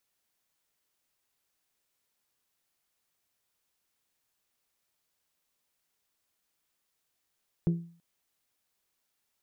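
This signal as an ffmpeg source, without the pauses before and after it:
ffmpeg -f lavfi -i "aevalsrc='0.1*pow(10,-3*t/0.45)*sin(2*PI*169*t)+0.0355*pow(10,-3*t/0.277)*sin(2*PI*338*t)+0.0126*pow(10,-3*t/0.244)*sin(2*PI*405.6*t)+0.00447*pow(10,-3*t/0.209)*sin(2*PI*507*t)+0.00158*pow(10,-3*t/0.171)*sin(2*PI*676*t)':duration=0.33:sample_rate=44100" out.wav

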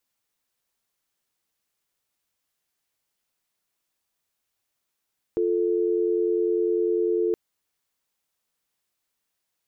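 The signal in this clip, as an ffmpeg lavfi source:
ffmpeg -f lavfi -i "aevalsrc='0.0708*(sin(2*PI*350*t)+sin(2*PI*440*t))':duration=1.97:sample_rate=44100" out.wav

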